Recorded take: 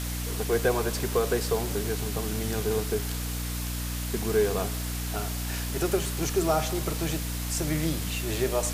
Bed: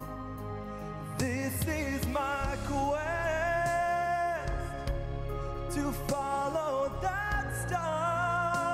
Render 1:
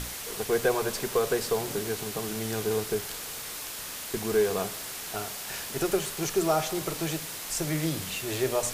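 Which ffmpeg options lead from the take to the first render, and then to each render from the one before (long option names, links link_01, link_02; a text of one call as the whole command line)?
ffmpeg -i in.wav -af "bandreject=frequency=60:width_type=h:width=6,bandreject=frequency=120:width_type=h:width=6,bandreject=frequency=180:width_type=h:width=6,bandreject=frequency=240:width_type=h:width=6,bandreject=frequency=300:width_type=h:width=6" out.wav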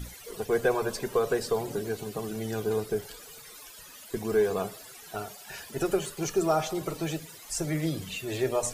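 ffmpeg -i in.wav -af "afftdn=noise_reduction=16:noise_floor=-38" out.wav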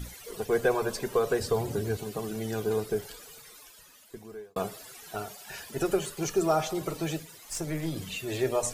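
ffmpeg -i in.wav -filter_complex "[0:a]asettb=1/sr,asplit=3[link_01][link_02][link_03];[link_01]atrim=end=1.404[link_04];[link_02]atrim=start=1.4:end=1.97,asetpts=PTS-STARTPTS,afade=type=in:duration=0.004:curve=qsin,afade=type=out:start_time=0.566:duration=0.004:curve=qsin,equalizer=frequency=85:width=1.5:gain=14.5[link_05];[link_03]atrim=start=1.966[link_06];[link_04][link_05]acrossfade=duration=0.004:curve1=hsin:curve2=qsin[link_07];[link_07][link_06]acrossfade=duration=0.004:curve1=qsin:curve2=hsin,asettb=1/sr,asplit=3[link_08][link_09][link_10];[link_08]atrim=end=7.224[link_11];[link_09]atrim=start=7.22:end=7.96,asetpts=PTS-STARTPTS,afade=type=in:duration=0.004:curve=qsin,afade=type=out:start_time=0.736:duration=0.004:curve=qsin,aeval=exprs='(tanh(12.6*val(0)+0.55)-tanh(0.55))/12.6':channel_layout=same[link_12];[link_10]atrim=start=7.956[link_13];[link_11][link_12]acrossfade=duration=0.004:curve1=hsin:curve2=qsin[link_14];[link_14][link_13]acrossfade=duration=0.004:curve1=qsin:curve2=hsin,asplit=2[link_15][link_16];[link_15]atrim=end=4.56,asetpts=PTS-STARTPTS,afade=type=out:start_time=3.07:duration=1.49[link_17];[link_16]atrim=start=4.56,asetpts=PTS-STARTPTS,afade=type=in:duration=0.004:curve=hsin[link_18];[link_17][link_18]concat=n=2:v=0:a=1" out.wav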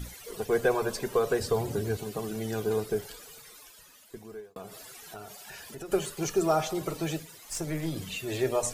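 ffmpeg -i in.wav -filter_complex "[0:a]asettb=1/sr,asplit=3[link_01][link_02][link_03];[link_01]atrim=end=4.404[link_04];[link_02]atrim=start=4.4:end=5.92,asetpts=PTS-STARTPTS,afade=type=in:duration=0.004:curve=qsin,afade=type=out:start_time=1.516:duration=0.004:curve=qsin,acompressor=threshold=-41dB:ratio=3:attack=3.2:release=140:knee=1:detection=peak[link_05];[link_03]atrim=start=5.916[link_06];[link_04][link_05]acrossfade=duration=0.004:curve1=hsin:curve2=qsin[link_07];[link_07][link_06]acrossfade=duration=0.004:curve1=qsin:curve2=hsin" out.wav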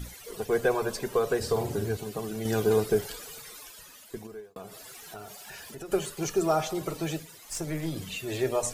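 ffmpeg -i in.wav -filter_complex "[0:a]asettb=1/sr,asplit=3[link_01][link_02][link_03];[link_01]atrim=end=1.384[link_04];[link_02]atrim=start=1.38:end=1.86,asetpts=PTS-STARTPTS,afade=type=in:duration=0.004:curve=qsin,afade=type=out:start_time=0.476:duration=0.004:curve=qsin,asplit=2[link_05][link_06];[link_06]adelay=48,volume=-8dB[link_07];[link_05][link_07]amix=inputs=2:normalize=0,atrim=end_sample=21168[link_08];[link_03]atrim=start=1.856[link_09];[link_04][link_08]acrossfade=duration=0.004:curve1=hsin:curve2=qsin[link_10];[link_10][link_09]acrossfade=duration=0.004:curve1=qsin:curve2=hsin,asettb=1/sr,asplit=3[link_11][link_12][link_13];[link_11]atrim=end=2.454[link_14];[link_12]atrim=start=2.45:end=4.27,asetpts=PTS-STARTPTS,afade=type=in:duration=0.004:curve=qsin,afade=type=out:start_time=1.816:duration=0.004:curve=qsin,acontrast=30[link_15];[link_13]atrim=start=4.266[link_16];[link_14][link_15]acrossfade=duration=0.004:curve1=hsin:curve2=qsin[link_17];[link_17][link_16]acrossfade=duration=0.004:curve1=qsin:curve2=hsin,asettb=1/sr,asplit=3[link_18][link_19][link_20];[link_18]atrim=end=4.854[link_21];[link_19]atrim=start=4.85:end=5.72,asetpts=PTS-STARTPTS,afade=type=in:duration=0.004:curve=qsin,afade=type=out:start_time=0.866:duration=0.004:curve=qsin,aeval=exprs='val(0)+0.5*0.0015*sgn(val(0))':channel_layout=same[link_22];[link_20]atrim=start=5.716[link_23];[link_21][link_22]acrossfade=duration=0.004:curve1=hsin:curve2=qsin[link_24];[link_24][link_23]acrossfade=duration=0.004:curve1=qsin:curve2=hsin" out.wav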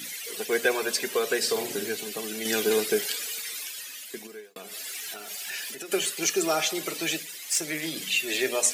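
ffmpeg -i in.wav -af "highpass=frequency=210:width=0.5412,highpass=frequency=210:width=1.3066,highshelf=frequency=1500:width_type=q:width=1.5:gain=10" out.wav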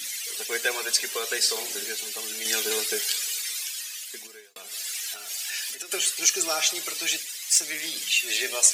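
ffmpeg -i in.wav -af "highpass=frequency=1000:poles=1,equalizer=frequency=6300:width_type=o:width=1.8:gain=6.5" out.wav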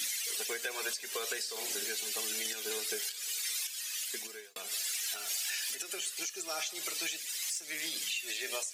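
ffmpeg -i in.wav -af "acompressor=threshold=-29dB:ratio=6,alimiter=level_in=1dB:limit=-24dB:level=0:latency=1:release=332,volume=-1dB" out.wav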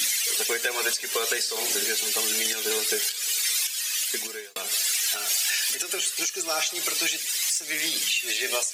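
ffmpeg -i in.wav -af "volume=10.5dB" out.wav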